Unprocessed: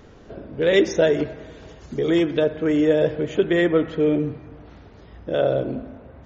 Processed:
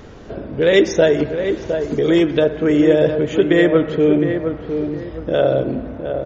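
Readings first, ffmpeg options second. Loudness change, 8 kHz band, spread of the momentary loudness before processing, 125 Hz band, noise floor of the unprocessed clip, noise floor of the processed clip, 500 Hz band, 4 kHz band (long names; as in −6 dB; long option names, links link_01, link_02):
+4.0 dB, can't be measured, 19 LU, +5.5 dB, −46 dBFS, −34 dBFS, +5.0 dB, +4.5 dB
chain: -filter_complex "[0:a]asplit=2[link_01][link_02];[link_02]acompressor=threshold=-30dB:ratio=6,volume=-2dB[link_03];[link_01][link_03]amix=inputs=2:normalize=0,asplit=2[link_04][link_05];[link_05]adelay=711,lowpass=frequency=1500:poles=1,volume=-7dB,asplit=2[link_06][link_07];[link_07]adelay=711,lowpass=frequency=1500:poles=1,volume=0.33,asplit=2[link_08][link_09];[link_09]adelay=711,lowpass=frequency=1500:poles=1,volume=0.33,asplit=2[link_10][link_11];[link_11]adelay=711,lowpass=frequency=1500:poles=1,volume=0.33[link_12];[link_04][link_06][link_08][link_10][link_12]amix=inputs=5:normalize=0,volume=3dB"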